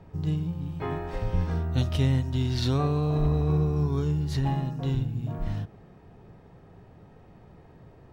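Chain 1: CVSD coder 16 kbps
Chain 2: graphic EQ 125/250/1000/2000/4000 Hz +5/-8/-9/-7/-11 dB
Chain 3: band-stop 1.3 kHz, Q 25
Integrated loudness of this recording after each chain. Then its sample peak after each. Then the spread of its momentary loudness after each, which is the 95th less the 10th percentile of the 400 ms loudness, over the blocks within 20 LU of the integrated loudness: -28.0 LUFS, -26.5 LUFS, -27.5 LUFS; -14.5 dBFS, -12.5 dBFS, -14.0 dBFS; 8 LU, 10 LU, 8 LU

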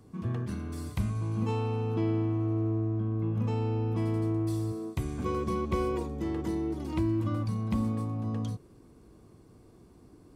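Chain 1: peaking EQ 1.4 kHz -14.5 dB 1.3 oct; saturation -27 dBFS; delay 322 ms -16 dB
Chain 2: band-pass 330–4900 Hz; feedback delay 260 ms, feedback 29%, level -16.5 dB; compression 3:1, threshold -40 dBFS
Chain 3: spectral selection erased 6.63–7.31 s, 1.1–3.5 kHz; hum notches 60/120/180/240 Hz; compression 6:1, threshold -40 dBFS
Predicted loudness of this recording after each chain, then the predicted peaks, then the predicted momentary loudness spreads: -34.5 LUFS, -42.5 LUFS, -43.0 LUFS; -26.0 dBFS, -27.5 dBFS, -26.0 dBFS; 4 LU, 20 LU, 14 LU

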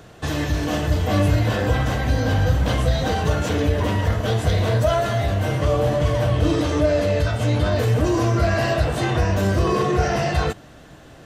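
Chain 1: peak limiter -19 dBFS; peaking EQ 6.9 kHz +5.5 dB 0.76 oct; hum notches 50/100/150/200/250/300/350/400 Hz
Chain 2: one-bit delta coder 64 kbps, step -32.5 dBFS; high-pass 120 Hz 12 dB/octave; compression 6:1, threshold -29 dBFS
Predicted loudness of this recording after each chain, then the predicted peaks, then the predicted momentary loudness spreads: -27.5 LUFS, -32.0 LUFS; -16.0 dBFS, -19.0 dBFS; 1 LU, 1 LU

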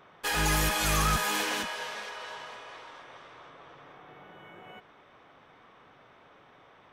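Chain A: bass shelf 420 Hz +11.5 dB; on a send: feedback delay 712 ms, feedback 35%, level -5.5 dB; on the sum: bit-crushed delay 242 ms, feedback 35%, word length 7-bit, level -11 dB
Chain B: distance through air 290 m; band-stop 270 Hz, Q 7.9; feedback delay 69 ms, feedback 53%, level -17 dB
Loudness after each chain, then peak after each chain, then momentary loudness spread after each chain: -23.5 LUFS, -32.0 LUFS; -7.0 dBFS, -18.5 dBFS; 20 LU, 23 LU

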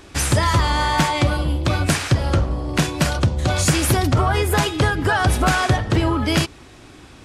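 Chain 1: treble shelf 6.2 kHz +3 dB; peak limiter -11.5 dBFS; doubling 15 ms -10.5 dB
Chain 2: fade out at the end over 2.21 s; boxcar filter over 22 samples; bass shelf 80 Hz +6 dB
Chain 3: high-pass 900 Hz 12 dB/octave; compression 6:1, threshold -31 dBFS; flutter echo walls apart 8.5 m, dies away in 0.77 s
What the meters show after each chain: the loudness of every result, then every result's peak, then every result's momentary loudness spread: -20.5 LUFS, -20.0 LUFS, -31.0 LUFS; -9.0 dBFS, -5.5 dBFS, -13.5 dBFS; 3 LU, 6 LU, 5 LU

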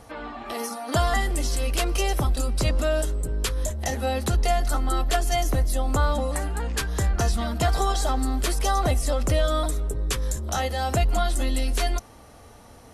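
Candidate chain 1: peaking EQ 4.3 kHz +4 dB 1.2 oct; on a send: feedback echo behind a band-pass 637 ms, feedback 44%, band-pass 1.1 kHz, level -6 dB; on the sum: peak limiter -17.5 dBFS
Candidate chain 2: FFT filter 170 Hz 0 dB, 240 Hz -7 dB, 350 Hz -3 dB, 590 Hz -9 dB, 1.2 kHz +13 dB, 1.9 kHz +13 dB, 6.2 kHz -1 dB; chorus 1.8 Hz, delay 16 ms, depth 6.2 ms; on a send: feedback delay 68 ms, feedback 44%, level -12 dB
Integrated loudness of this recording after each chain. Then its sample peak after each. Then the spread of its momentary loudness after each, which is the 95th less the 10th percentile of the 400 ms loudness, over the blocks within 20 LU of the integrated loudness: -27.5 LUFS, -23.5 LUFS; -17.5 dBFS, -6.5 dBFS; 4 LU, 8 LU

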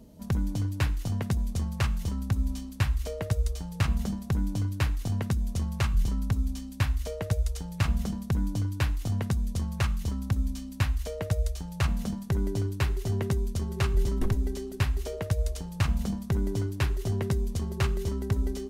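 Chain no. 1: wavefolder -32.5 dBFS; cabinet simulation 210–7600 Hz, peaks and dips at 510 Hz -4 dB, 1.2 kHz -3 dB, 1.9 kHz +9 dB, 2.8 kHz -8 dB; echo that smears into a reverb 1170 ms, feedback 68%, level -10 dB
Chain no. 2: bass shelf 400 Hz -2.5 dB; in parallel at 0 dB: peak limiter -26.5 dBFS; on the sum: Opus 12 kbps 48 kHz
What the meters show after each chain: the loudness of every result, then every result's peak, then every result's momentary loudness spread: -40.5 LUFS, -28.5 LUFS; -26.5 dBFS, -12.5 dBFS; 2 LU, 3 LU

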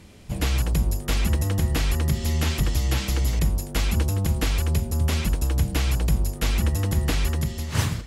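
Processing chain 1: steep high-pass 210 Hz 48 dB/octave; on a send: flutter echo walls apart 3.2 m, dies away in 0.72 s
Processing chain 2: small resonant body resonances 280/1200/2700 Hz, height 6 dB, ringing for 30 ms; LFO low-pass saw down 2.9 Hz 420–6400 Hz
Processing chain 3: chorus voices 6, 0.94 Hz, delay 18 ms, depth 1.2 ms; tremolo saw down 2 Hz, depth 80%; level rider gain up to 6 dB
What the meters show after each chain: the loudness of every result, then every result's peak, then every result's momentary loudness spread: -26.0 LUFS, -24.0 LUFS, -22.0 LUFS; -10.5 dBFS, -9.0 dBFS, -5.0 dBFS; 4 LU, 2 LU, 6 LU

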